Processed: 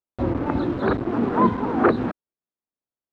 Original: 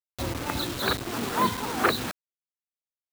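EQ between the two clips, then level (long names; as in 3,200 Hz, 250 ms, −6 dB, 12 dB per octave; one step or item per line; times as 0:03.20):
low-pass filter 1,200 Hz 12 dB per octave
parametric band 280 Hz +6.5 dB 1.4 octaves
+5.0 dB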